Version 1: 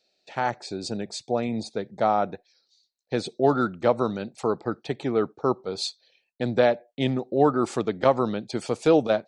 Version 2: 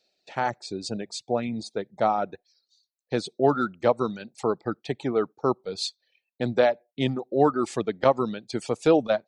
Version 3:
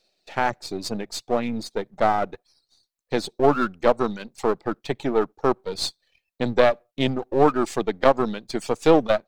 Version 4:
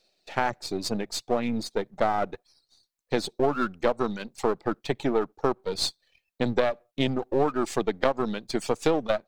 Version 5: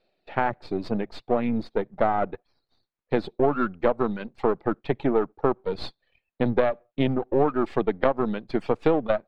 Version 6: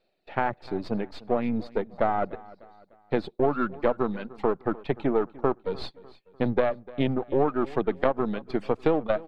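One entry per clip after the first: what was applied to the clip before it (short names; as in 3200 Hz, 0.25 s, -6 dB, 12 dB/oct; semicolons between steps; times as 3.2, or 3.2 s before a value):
reverb removal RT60 1 s
half-wave gain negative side -7 dB; gain +5.5 dB
compressor 6:1, threshold -19 dBFS, peak gain reduction 9.5 dB
air absorption 440 m; gain +3.5 dB
feedback echo 0.299 s, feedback 44%, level -20.5 dB; gain -2 dB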